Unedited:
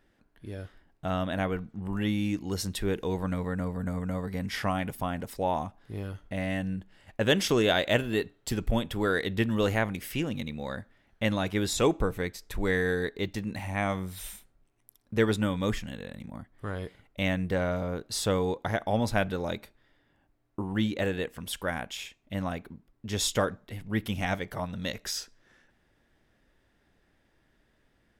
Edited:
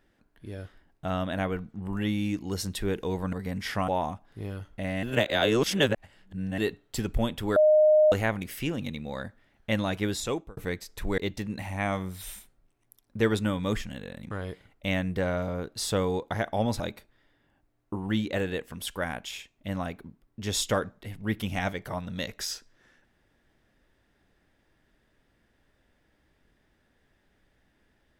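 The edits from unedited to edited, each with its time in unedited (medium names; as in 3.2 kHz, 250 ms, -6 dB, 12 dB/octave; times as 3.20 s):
3.33–4.21 s: delete
4.76–5.41 s: delete
6.56–8.11 s: reverse
9.09–9.65 s: bleep 614 Hz -15.5 dBFS
11.57–12.10 s: fade out
12.71–13.15 s: delete
16.28–16.65 s: delete
19.14–19.46 s: delete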